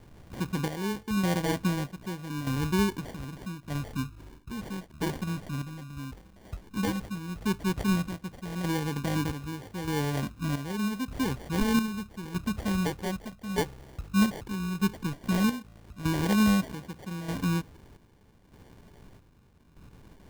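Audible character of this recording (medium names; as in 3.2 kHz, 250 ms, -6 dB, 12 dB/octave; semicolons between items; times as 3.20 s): phasing stages 12, 0.13 Hz, lowest notch 430–1300 Hz; aliases and images of a low sample rate 1.3 kHz, jitter 0%; chopped level 0.81 Hz, depth 60%, duty 55%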